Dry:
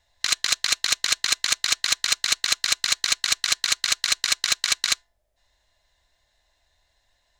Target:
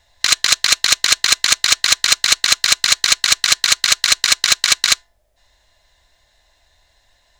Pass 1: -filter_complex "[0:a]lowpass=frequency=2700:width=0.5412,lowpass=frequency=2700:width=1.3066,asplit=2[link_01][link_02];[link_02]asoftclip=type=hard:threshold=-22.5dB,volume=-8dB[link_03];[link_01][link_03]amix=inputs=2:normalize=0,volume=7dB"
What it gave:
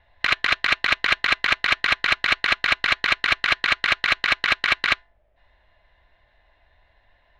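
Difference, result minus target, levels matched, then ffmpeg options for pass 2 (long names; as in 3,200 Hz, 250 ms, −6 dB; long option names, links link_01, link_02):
2,000 Hz band +7.0 dB
-filter_complex "[0:a]asplit=2[link_01][link_02];[link_02]asoftclip=type=hard:threshold=-22.5dB,volume=-8dB[link_03];[link_01][link_03]amix=inputs=2:normalize=0,volume=7dB"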